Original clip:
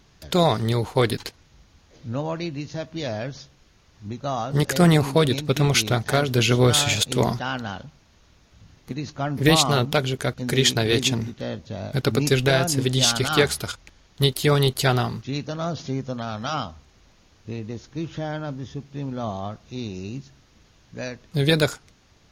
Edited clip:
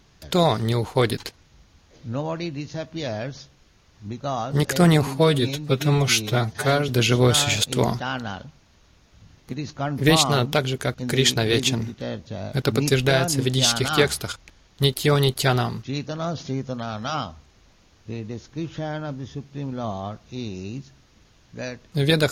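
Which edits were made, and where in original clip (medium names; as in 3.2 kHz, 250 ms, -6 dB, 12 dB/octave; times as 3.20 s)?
5.07–6.28 s: stretch 1.5×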